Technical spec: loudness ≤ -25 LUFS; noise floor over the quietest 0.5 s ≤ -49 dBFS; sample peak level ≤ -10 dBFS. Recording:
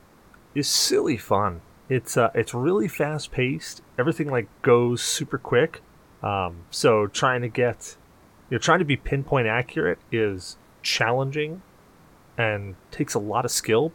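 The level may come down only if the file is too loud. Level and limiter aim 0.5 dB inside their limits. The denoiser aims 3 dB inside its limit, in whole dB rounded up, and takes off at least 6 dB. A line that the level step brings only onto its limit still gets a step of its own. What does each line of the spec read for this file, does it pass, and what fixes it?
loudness -24.0 LUFS: fail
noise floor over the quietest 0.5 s -53 dBFS: pass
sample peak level -4.0 dBFS: fail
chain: trim -1.5 dB; peak limiter -10.5 dBFS

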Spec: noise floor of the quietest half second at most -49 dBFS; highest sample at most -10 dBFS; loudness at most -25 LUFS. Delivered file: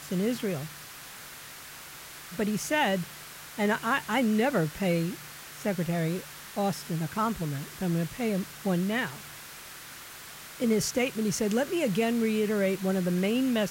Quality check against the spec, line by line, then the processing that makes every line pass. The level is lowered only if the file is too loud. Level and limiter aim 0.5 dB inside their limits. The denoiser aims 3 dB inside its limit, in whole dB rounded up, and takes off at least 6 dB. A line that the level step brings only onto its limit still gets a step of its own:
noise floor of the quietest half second -45 dBFS: fail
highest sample -15.0 dBFS: pass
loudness -28.5 LUFS: pass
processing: noise reduction 7 dB, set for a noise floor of -45 dBFS

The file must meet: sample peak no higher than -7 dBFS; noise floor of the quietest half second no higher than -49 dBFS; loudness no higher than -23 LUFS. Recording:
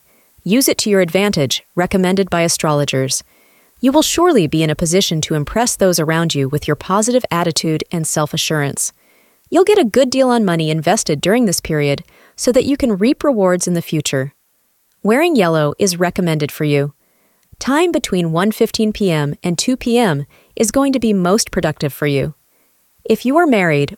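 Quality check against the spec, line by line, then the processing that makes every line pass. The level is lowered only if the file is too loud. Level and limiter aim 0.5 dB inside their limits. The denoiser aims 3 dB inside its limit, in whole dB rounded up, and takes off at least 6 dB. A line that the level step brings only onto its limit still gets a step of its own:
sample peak -2.0 dBFS: fail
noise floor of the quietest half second -60 dBFS: pass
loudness -15.5 LUFS: fail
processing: trim -8 dB

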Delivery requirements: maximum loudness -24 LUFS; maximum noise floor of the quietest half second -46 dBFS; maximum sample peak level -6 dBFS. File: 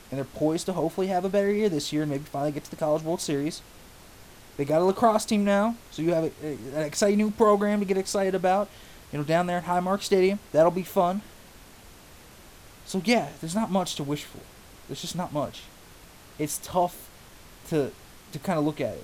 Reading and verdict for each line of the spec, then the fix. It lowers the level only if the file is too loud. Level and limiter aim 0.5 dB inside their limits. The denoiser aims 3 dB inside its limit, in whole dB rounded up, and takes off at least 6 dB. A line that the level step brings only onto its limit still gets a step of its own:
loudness -26.5 LUFS: pass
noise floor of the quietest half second -49 dBFS: pass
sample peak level -8.5 dBFS: pass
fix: none needed

